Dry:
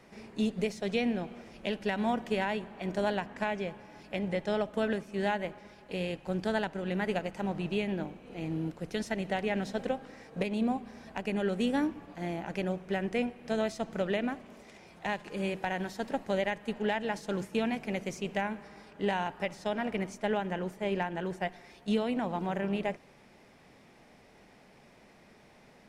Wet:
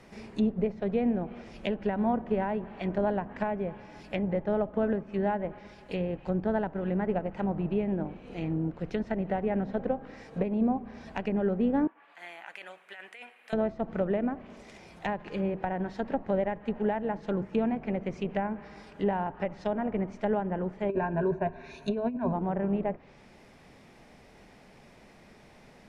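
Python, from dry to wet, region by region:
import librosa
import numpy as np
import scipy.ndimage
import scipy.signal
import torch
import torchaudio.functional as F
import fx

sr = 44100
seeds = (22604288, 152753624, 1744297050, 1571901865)

y = fx.chain(x, sr, fx.highpass(hz=1500.0, slope=12),
    fx.peak_eq(hz=5600.0, db=-15.0, octaves=1.0),
    fx.over_compress(threshold_db=-46.0, ratio=-1.0), at=(11.87, 13.53))
y = fx.chain(y, sr, fx.ripple_eq(per_octave=1.5, db=14),
    fx.over_compress(threshold_db=-30.0, ratio=-0.5), at=(20.89, 22.33))
y = fx.env_lowpass_down(y, sr, base_hz=1100.0, full_db=-29.5)
y = fx.low_shelf(y, sr, hz=92.0, db=7.0)
y = y * 10.0 ** (2.5 / 20.0)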